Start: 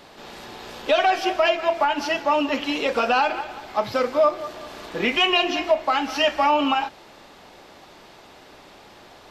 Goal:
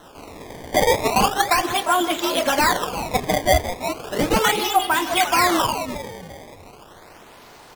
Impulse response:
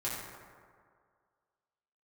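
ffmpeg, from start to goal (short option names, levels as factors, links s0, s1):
-filter_complex "[0:a]asplit=5[s0][s1][s2][s3][s4];[s1]adelay=423,afreqshift=-67,volume=0.316[s5];[s2]adelay=846,afreqshift=-134,volume=0.107[s6];[s3]adelay=1269,afreqshift=-201,volume=0.0367[s7];[s4]adelay=1692,afreqshift=-268,volume=0.0124[s8];[s0][s5][s6][s7][s8]amix=inputs=5:normalize=0,acrusher=samples=22:mix=1:aa=0.000001:lfo=1:lforange=35.2:lforate=0.3,asetrate=52920,aresample=44100,volume=1.19"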